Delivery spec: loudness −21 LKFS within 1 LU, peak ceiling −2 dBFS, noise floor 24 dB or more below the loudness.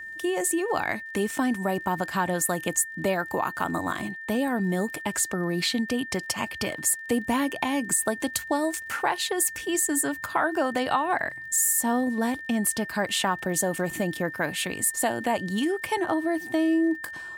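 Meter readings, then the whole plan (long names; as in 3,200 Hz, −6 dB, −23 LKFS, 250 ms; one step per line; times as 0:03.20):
crackle rate 27 per second; interfering tone 1,800 Hz; level of the tone −36 dBFS; integrated loudness −26.0 LKFS; sample peak −11.0 dBFS; target loudness −21.0 LKFS
→ click removal
notch filter 1,800 Hz, Q 30
level +5 dB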